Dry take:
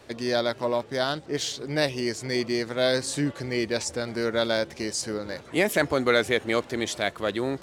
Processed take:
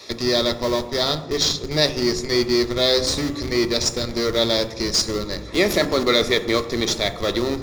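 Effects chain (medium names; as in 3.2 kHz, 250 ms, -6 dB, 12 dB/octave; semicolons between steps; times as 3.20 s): comb of notches 1.5 kHz; in parallel at -4 dB: Schmitt trigger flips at -27.5 dBFS; on the sum: treble shelf 5.5 kHz +4.5 dB; reverberation RT60 1.1 s, pre-delay 3 ms, DRR 6.5 dB; tape noise reduction on one side only encoder only; trim +2.5 dB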